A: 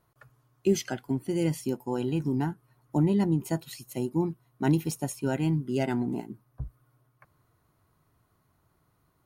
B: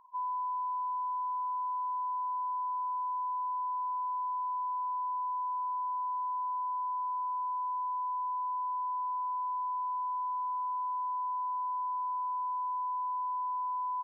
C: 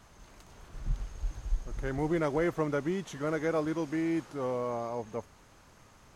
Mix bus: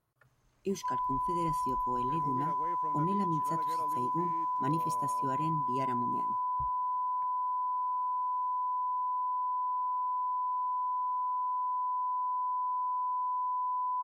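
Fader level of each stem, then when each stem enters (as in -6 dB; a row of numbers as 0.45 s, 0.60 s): -10.0 dB, +1.5 dB, -17.5 dB; 0.00 s, 0.70 s, 0.25 s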